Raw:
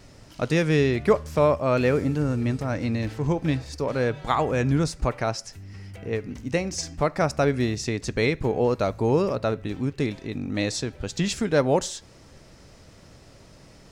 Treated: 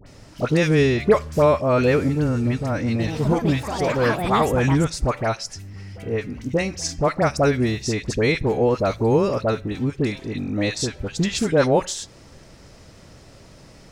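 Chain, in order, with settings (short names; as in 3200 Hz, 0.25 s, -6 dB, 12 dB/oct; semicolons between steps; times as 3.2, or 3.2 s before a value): dispersion highs, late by 64 ms, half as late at 1400 Hz; 2.84–5.46 echoes that change speed 0.153 s, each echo +6 st, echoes 2, each echo -6 dB; gain +3.5 dB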